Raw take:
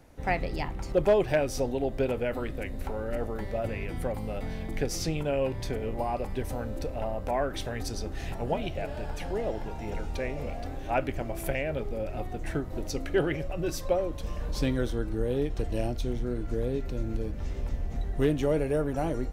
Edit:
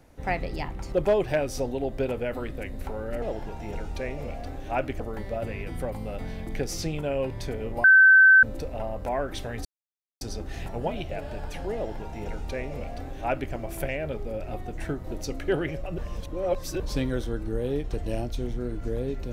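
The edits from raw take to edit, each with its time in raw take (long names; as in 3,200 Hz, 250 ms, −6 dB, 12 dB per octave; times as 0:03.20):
0:06.06–0:06.65: beep over 1,540 Hz −11 dBFS
0:07.87: splice in silence 0.56 s
0:09.41–0:11.19: duplicate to 0:03.22
0:13.64–0:14.46: reverse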